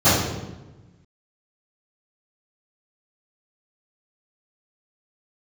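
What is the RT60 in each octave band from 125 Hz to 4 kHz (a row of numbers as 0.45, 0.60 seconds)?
1.6, 1.5, 1.2, 1.0, 0.90, 0.80 seconds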